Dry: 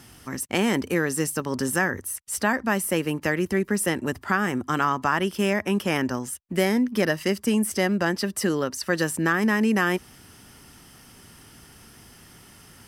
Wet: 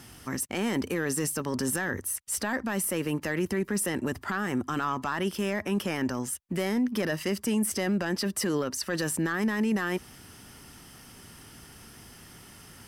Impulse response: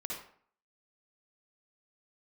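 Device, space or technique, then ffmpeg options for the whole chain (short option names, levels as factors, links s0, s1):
soft clipper into limiter: -af "asoftclip=type=tanh:threshold=0.251,alimiter=limit=0.0944:level=0:latency=1:release=11"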